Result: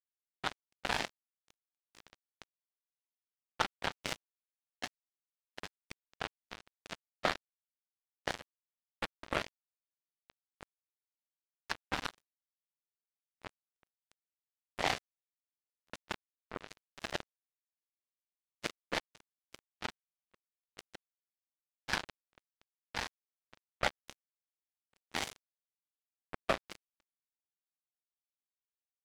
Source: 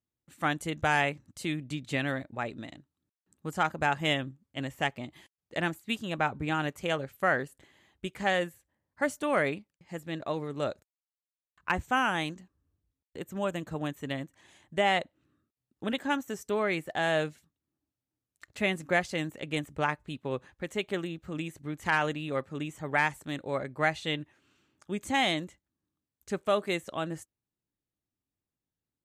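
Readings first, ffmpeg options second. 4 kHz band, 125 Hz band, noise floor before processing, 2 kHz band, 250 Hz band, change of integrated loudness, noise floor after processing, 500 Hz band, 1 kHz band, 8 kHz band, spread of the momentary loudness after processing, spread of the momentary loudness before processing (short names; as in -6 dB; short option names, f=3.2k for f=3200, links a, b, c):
-6.5 dB, -16.5 dB, under -85 dBFS, -11.0 dB, -17.0 dB, -8.5 dB, under -85 dBFS, -14.0 dB, -11.0 dB, -4.0 dB, 19 LU, 13 LU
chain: -af "lowshelf=f=88:g=-3,afftfilt=real='hypot(re,im)*cos(2*PI*random(0))':imag='hypot(re,im)*sin(2*PI*random(1))':win_size=512:overlap=0.75,acrusher=bits=3:mix=0:aa=0.5,volume=2.5dB"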